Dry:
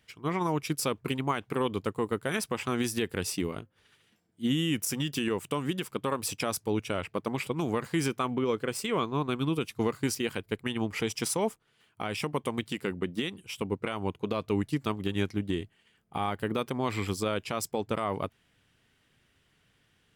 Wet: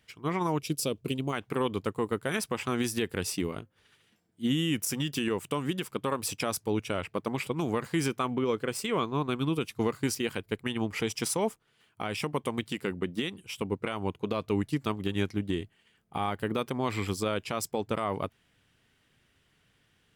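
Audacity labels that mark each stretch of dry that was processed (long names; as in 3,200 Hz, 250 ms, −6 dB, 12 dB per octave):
0.590000	1.330000	flat-topped bell 1,300 Hz −11.5 dB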